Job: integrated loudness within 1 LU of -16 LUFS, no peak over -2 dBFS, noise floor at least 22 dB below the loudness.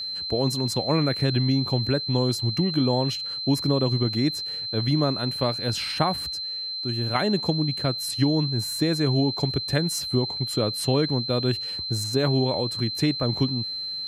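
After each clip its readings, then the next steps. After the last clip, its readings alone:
steady tone 4100 Hz; tone level -29 dBFS; loudness -24.0 LUFS; peak -8.0 dBFS; loudness target -16.0 LUFS
-> notch 4100 Hz, Q 30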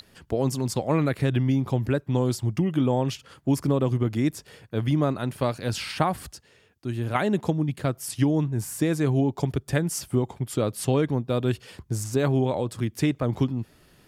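steady tone none; loudness -26.0 LUFS; peak -7.5 dBFS; loudness target -16.0 LUFS
-> gain +10 dB; limiter -2 dBFS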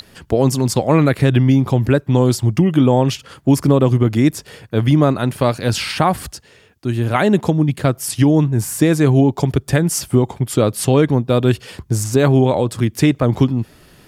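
loudness -16.0 LUFS; peak -2.0 dBFS; noise floor -49 dBFS

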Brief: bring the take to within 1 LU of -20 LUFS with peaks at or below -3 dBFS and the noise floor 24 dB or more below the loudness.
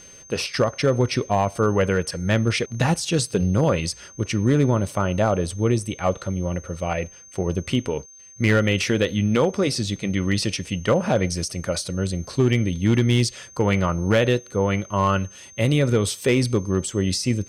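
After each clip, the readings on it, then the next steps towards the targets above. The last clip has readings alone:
clipped 0.4%; flat tops at -11.0 dBFS; steady tone 6300 Hz; tone level -44 dBFS; loudness -22.5 LUFS; peak -11.0 dBFS; loudness target -20.0 LUFS
-> clip repair -11 dBFS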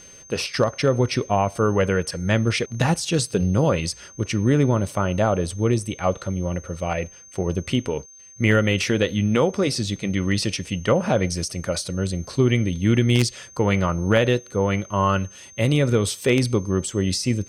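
clipped 0.0%; steady tone 6300 Hz; tone level -44 dBFS
-> notch 6300 Hz, Q 30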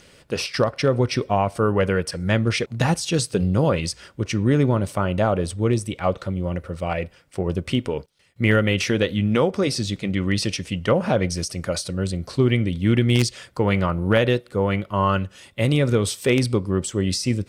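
steady tone none; loudness -22.5 LUFS; peak -2.5 dBFS; loudness target -20.0 LUFS
-> gain +2.5 dB; limiter -3 dBFS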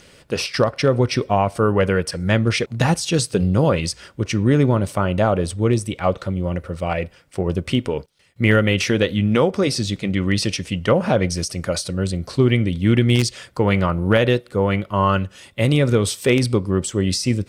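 loudness -20.0 LUFS; peak -3.0 dBFS; noise floor -51 dBFS

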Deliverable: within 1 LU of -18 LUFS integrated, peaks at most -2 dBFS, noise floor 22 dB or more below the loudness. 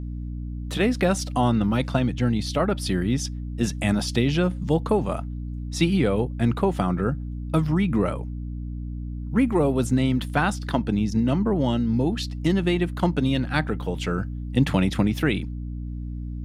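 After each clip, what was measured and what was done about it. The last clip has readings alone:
hum 60 Hz; harmonics up to 300 Hz; hum level -29 dBFS; loudness -24.5 LUFS; peak -6.5 dBFS; loudness target -18.0 LUFS
-> de-hum 60 Hz, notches 5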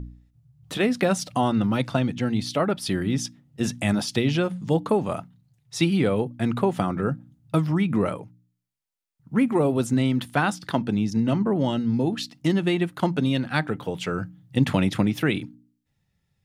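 hum none; loudness -24.5 LUFS; peak -7.5 dBFS; loudness target -18.0 LUFS
-> gain +6.5 dB; limiter -2 dBFS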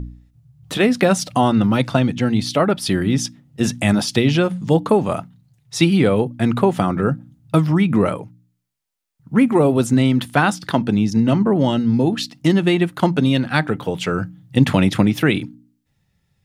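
loudness -18.0 LUFS; peak -2.0 dBFS; noise floor -68 dBFS

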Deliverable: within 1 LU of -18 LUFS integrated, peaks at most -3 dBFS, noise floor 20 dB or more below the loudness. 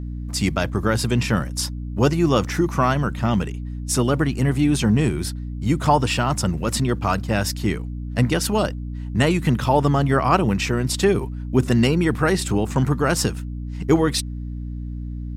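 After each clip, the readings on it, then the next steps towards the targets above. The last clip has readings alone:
hum 60 Hz; harmonics up to 300 Hz; hum level -27 dBFS; loudness -21.0 LUFS; peak -4.0 dBFS; loudness target -18.0 LUFS
-> notches 60/120/180/240/300 Hz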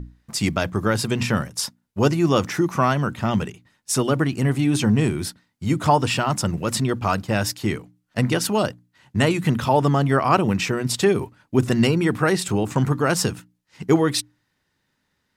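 hum none; loudness -21.5 LUFS; peak -4.0 dBFS; loudness target -18.0 LUFS
-> gain +3.5 dB; limiter -3 dBFS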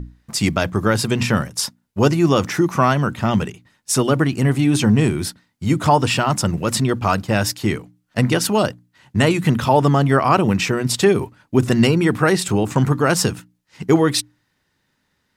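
loudness -18.5 LUFS; peak -3.0 dBFS; noise floor -69 dBFS

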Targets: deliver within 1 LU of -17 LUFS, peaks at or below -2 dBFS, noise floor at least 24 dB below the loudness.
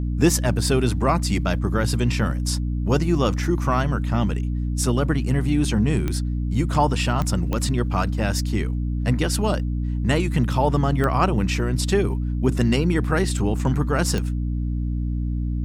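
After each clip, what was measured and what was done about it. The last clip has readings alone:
clicks 5; hum 60 Hz; harmonics up to 300 Hz; hum level -22 dBFS; loudness -22.5 LUFS; peak -5.0 dBFS; loudness target -17.0 LUFS
-> de-click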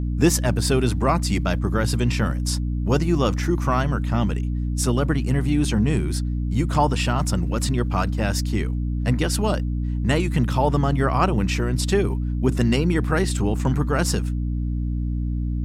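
clicks 0; hum 60 Hz; harmonics up to 300 Hz; hum level -22 dBFS
-> notches 60/120/180/240/300 Hz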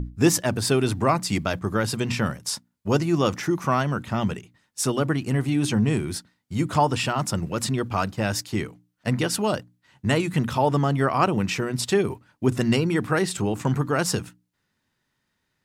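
hum none; loudness -24.5 LUFS; peak -6.5 dBFS; loudness target -17.0 LUFS
-> gain +7.5 dB; limiter -2 dBFS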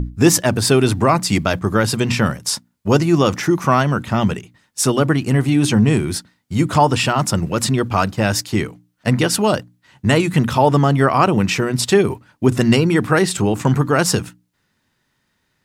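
loudness -17.0 LUFS; peak -2.0 dBFS; noise floor -68 dBFS

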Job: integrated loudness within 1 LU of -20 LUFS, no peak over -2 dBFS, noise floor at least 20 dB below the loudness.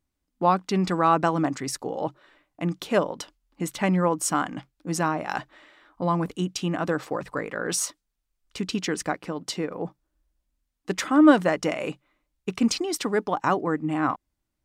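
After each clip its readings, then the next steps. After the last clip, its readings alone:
loudness -25.5 LUFS; peak -4.5 dBFS; loudness target -20.0 LUFS
-> gain +5.5 dB; limiter -2 dBFS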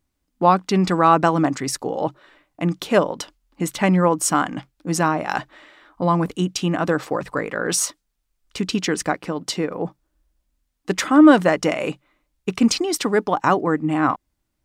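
loudness -20.5 LUFS; peak -2.0 dBFS; noise floor -75 dBFS

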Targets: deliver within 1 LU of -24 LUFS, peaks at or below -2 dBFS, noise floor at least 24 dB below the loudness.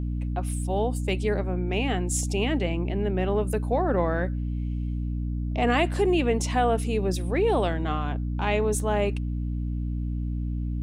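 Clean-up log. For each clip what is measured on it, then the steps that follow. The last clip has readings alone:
hum 60 Hz; harmonics up to 300 Hz; hum level -26 dBFS; loudness -26.5 LUFS; peak -10.0 dBFS; loudness target -24.0 LUFS
-> notches 60/120/180/240/300 Hz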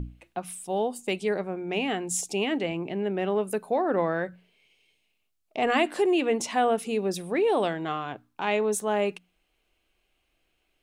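hum none; loudness -27.5 LUFS; peak -10.0 dBFS; loudness target -24.0 LUFS
-> gain +3.5 dB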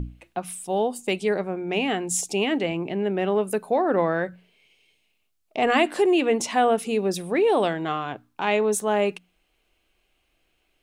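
loudness -24.0 LUFS; peak -6.5 dBFS; noise floor -71 dBFS

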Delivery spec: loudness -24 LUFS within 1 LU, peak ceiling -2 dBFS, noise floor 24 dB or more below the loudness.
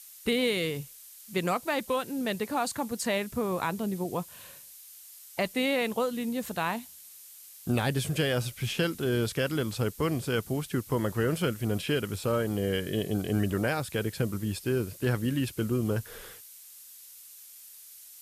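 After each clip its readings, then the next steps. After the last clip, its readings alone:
noise floor -50 dBFS; noise floor target -54 dBFS; loudness -30.0 LUFS; peak -14.5 dBFS; loudness target -24.0 LUFS
-> noise print and reduce 6 dB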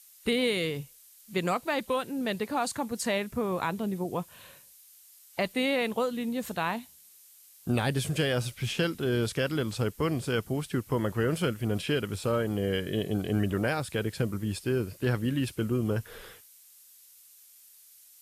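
noise floor -56 dBFS; loudness -30.0 LUFS; peak -14.5 dBFS; loudness target -24.0 LUFS
-> gain +6 dB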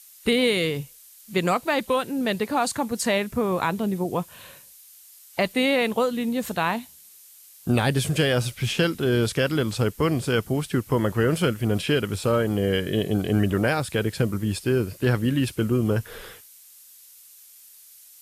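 loudness -24.0 LUFS; peak -8.5 dBFS; noise floor -50 dBFS

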